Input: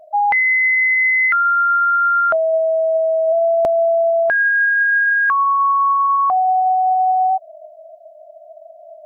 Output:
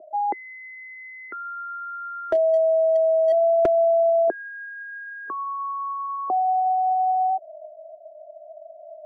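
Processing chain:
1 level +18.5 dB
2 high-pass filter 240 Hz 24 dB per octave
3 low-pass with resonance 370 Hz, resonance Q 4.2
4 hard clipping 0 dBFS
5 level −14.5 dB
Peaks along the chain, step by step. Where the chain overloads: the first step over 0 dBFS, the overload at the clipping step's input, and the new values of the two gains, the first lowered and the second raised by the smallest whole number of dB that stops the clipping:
+7.5, +9.0, +9.5, 0.0, −14.5 dBFS
step 1, 9.5 dB
step 1 +8.5 dB, step 5 −4.5 dB

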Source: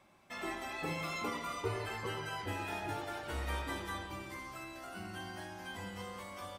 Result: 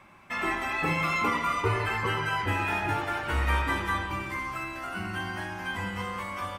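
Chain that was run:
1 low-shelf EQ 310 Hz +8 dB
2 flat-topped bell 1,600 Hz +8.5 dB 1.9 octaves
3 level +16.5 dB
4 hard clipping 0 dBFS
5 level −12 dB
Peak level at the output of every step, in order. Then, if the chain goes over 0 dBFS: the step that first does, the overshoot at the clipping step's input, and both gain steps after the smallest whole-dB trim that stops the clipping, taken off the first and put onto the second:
−21.0, −18.5, −2.0, −2.0, −14.0 dBFS
no step passes full scale

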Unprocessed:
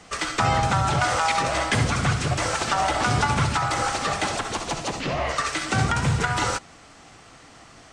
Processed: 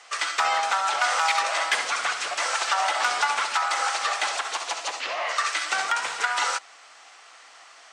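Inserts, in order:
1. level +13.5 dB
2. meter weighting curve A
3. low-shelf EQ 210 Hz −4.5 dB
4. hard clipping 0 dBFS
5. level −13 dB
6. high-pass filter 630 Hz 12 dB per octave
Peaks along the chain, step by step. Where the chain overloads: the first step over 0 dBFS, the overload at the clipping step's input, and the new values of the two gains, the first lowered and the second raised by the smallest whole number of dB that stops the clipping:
+4.0, +4.0, +4.0, 0.0, −13.0, −10.0 dBFS
step 1, 4.0 dB
step 1 +9.5 dB, step 5 −9 dB

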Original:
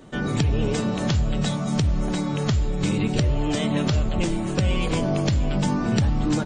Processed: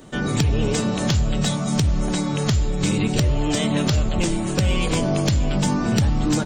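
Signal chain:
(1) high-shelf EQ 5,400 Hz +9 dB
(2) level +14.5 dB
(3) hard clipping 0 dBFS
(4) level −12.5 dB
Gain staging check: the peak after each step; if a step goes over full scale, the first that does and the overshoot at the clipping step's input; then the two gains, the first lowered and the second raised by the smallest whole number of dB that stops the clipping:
−7.5, +7.0, 0.0, −12.5 dBFS
step 2, 7.0 dB
step 2 +7.5 dB, step 4 −5.5 dB

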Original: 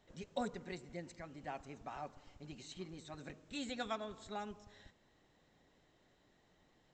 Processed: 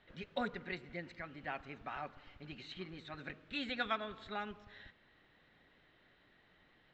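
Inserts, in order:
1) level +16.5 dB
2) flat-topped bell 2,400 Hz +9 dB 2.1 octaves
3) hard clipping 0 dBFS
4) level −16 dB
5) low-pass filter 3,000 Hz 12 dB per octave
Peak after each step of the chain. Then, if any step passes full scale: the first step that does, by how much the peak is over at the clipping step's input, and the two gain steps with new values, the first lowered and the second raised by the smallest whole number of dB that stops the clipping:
−9.5, −5.5, −5.5, −21.5, −22.5 dBFS
no step passes full scale

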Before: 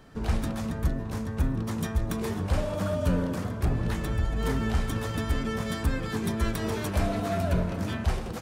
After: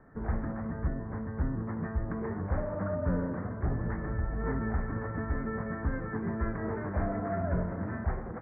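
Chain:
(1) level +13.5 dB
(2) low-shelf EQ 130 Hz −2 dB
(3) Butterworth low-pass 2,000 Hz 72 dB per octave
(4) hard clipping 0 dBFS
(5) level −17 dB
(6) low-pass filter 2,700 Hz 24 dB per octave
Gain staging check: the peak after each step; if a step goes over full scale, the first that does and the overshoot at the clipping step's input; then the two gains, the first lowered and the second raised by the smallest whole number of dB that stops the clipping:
−2.0, −2.5, −2.5, −2.5, −19.5, −19.5 dBFS
no step passes full scale

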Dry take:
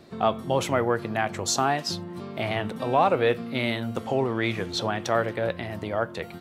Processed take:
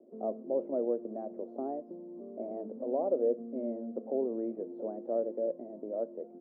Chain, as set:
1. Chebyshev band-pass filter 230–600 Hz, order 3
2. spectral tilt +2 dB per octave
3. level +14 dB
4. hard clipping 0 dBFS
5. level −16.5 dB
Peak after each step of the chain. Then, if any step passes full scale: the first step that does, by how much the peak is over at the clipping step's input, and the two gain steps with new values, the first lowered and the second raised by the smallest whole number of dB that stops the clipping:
−14.0, −16.0, −2.0, −2.0, −18.5 dBFS
no step passes full scale

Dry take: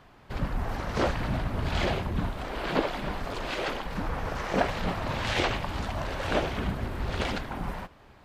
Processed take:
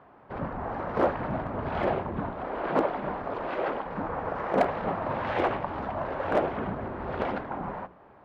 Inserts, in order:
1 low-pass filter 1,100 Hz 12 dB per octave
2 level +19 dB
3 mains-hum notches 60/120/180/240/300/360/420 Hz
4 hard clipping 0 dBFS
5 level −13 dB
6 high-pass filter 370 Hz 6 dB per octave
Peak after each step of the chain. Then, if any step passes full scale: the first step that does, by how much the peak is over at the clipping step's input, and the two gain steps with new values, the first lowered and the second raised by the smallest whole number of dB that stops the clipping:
−11.0, +8.0, +7.5, 0.0, −13.0, −10.5 dBFS
step 2, 7.5 dB
step 2 +11 dB, step 5 −5 dB

